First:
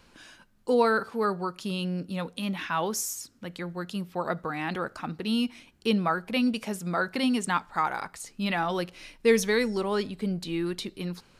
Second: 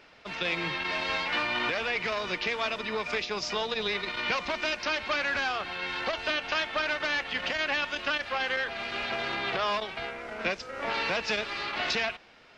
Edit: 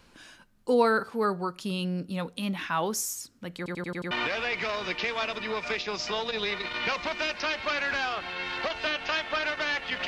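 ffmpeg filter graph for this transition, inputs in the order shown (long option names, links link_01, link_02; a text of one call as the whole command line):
ffmpeg -i cue0.wav -i cue1.wav -filter_complex "[0:a]apad=whole_dur=10.07,atrim=end=10.07,asplit=6[link_01][link_02][link_03][link_04][link_05][link_06];[link_01]atrim=end=3.662[link_07];[link_02]atrim=start=3.568:end=3.662[link_08];[link_03]atrim=start=3.568:end=3.662[link_09];[link_04]atrim=start=3.568:end=3.662[link_10];[link_05]atrim=start=3.568:end=3.662[link_11];[link_06]atrim=start=3.568:end=3.662[link_12];[1:a]atrim=start=1.538:end=7.5[link_13];[link_07][link_08]acrossfade=duration=0.004:curve1=hsin:curve2=hsin[link_14];[link_14][link_09]acrossfade=duration=0.004:curve1=hsin:curve2=hsin[link_15];[link_15][link_10]acrossfade=duration=0.004:curve1=hsin:curve2=hsin[link_16];[link_16][link_11]acrossfade=duration=0.004:curve1=hsin:curve2=hsin[link_17];[link_17][link_12]acrossfade=duration=0.004:curve1=hsin:curve2=hsin[link_18];[link_18][link_13]acrossfade=duration=0.004:curve1=hsin:curve2=hsin" out.wav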